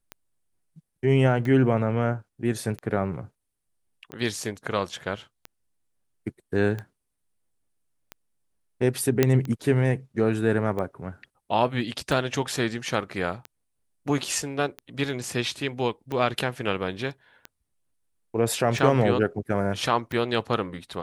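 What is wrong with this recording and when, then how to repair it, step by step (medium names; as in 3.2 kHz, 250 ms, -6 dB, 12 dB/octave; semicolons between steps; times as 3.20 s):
tick 45 rpm -20 dBFS
9.23 s: pop -5 dBFS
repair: de-click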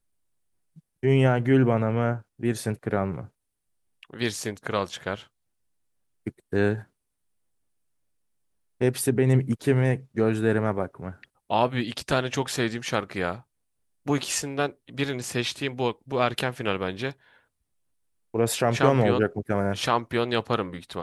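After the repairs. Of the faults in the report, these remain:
nothing left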